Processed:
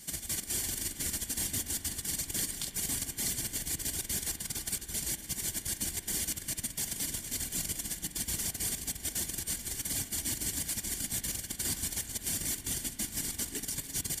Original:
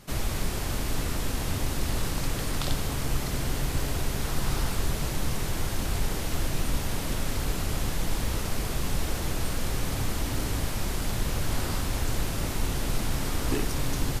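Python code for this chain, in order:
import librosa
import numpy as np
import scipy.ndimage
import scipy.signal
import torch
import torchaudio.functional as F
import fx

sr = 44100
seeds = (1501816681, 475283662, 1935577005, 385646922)

y = fx.graphic_eq_10(x, sr, hz=(125, 500, 1000, 8000), db=(-7, -11, -10, 10))
y = fx.dereverb_blind(y, sr, rt60_s=0.57)
y = fx.high_shelf(y, sr, hz=12000.0, db=11.5)
y = fx.over_compress(y, sr, threshold_db=-30.0, ratio=-0.5)
y = fx.notch_comb(y, sr, f0_hz=1300.0)
y = fx.rev_spring(y, sr, rt60_s=3.4, pass_ms=(33, 39), chirp_ms=45, drr_db=9.0)
y = y * 10.0 ** (-2.5 / 20.0)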